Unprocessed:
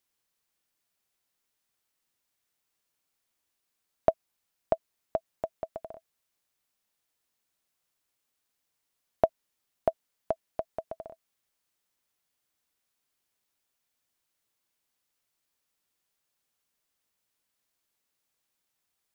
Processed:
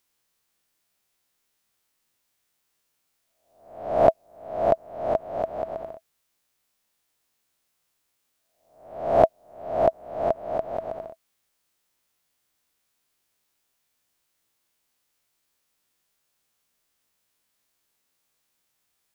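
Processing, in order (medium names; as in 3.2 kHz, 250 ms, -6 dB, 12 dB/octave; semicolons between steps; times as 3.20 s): reverse spectral sustain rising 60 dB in 0.64 s; trim +4 dB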